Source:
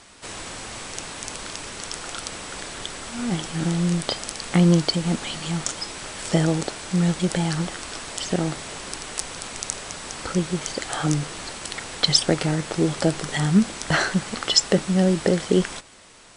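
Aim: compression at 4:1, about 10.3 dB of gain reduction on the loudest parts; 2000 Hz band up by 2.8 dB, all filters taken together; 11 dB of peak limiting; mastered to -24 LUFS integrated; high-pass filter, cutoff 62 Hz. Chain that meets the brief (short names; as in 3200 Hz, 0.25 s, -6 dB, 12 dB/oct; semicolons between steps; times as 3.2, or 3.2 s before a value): HPF 62 Hz; bell 2000 Hz +3.5 dB; compressor 4:1, threshold -24 dBFS; gain +6 dB; limiter -10 dBFS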